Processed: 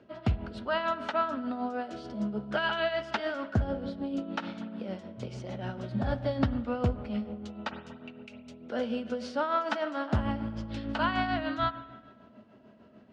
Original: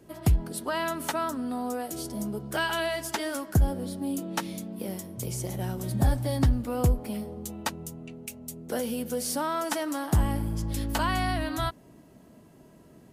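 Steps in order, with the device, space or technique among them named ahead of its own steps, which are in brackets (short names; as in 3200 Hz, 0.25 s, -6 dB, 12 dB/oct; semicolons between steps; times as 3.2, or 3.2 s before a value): combo amplifier with spring reverb and tremolo (spring tank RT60 1.4 s, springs 47/58 ms, chirp 55 ms, DRR 12 dB; tremolo 6.7 Hz, depth 54%; speaker cabinet 77–4300 Hz, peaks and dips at 160 Hz -10 dB, 220 Hz +8 dB, 320 Hz -4 dB, 600 Hz +6 dB, 1400 Hz +8 dB, 2800 Hz +4 dB); gain -1.5 dB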